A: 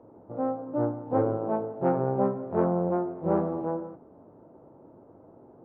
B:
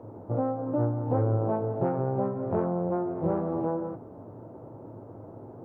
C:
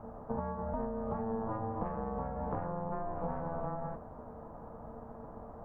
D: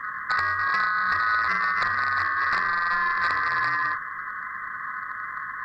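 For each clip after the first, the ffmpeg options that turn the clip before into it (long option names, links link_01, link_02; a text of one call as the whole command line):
ffmpeg -i in.wav -af "acompressor=threshold=-32dB:ratio=6,equalizer=frequency=110:width_type=o:width=0.33:gain=12.5,volume=7dB" out.wav
ffmpeg -i in.wav -af "acompressor=threshold=-30dB:ratio=6,aeval=exprs='val(0)*sin(2*PI*340*n/s)':channel_layout=same" out.wav
ffmpeg -i in.wav -filter_complex "[0:a]afftfilt=real='real(if(lt(b,960),b+48*(1-2*mod(floor(b/48),2)),b),0)':imag='imag(if(lt(b,960),b+48*(1-2*mod(floor(b/48),2)),b),0)':win_size=2048:overlap=0.75,acrossover=split=220|640[link_01][link_02][link_03];[link_01]acrusher=bits=3:mode=log:mix=0:aa=0.000001[link_04];[link_03]aeval=exprs='0.0841*sin(PI/2*2.24*val(0)/0.0841)':channel_layout=same[link_05];[link_04][link_02][link_05]amix=inputs=3:normalize=0,volume=3.5dB" out.wav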